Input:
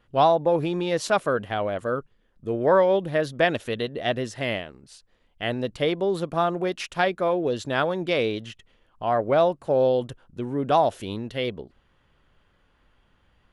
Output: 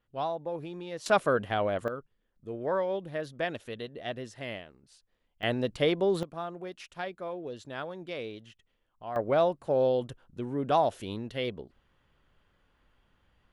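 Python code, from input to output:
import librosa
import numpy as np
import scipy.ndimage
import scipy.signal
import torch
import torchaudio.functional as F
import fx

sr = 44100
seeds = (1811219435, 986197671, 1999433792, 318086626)

y = fx.gain(x, sr, db=fx.steps((0.0, -14.0), (1.06, -2.0), (1.88, -11.0), (5.43, -2.0), (6.23, -14.0), (9.16, -5.0)))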